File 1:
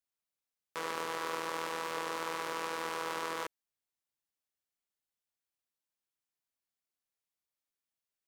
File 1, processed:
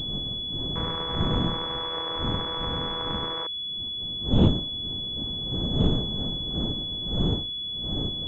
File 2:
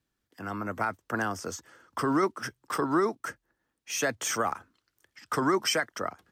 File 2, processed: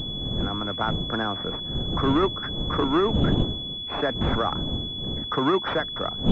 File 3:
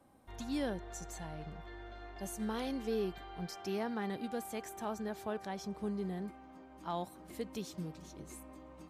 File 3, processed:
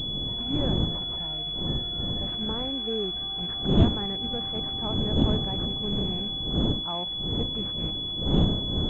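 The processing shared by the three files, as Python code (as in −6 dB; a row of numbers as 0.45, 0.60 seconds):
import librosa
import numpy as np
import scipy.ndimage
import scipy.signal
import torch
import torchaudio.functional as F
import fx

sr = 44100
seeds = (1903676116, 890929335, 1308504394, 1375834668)

y = fx.rattle_buzz(x, sr, strikes_db=-43.0, level_db=-38.0)
y = fx.dmg_wind(y, sr, seeds[0], corner_hz=220.0, level_db=-33.0)
y = fx.pwm(y, sr, carrier_hz=3400.0)
y = y * librosa.db_to_amplitude(4.0)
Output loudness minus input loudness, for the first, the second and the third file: +10.0, +4.5, +14.0 LU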